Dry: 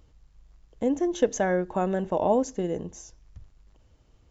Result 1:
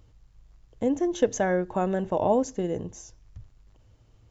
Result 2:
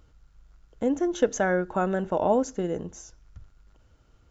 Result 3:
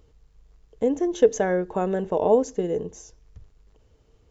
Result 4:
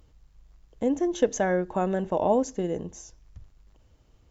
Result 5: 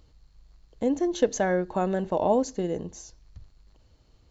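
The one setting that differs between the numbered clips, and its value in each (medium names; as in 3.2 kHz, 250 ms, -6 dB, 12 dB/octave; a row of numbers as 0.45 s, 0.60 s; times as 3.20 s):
peaking EQ, frequency: 110 Hz, 1.4 kHz, 440 Hz, 15 kHz, 4.3 kHz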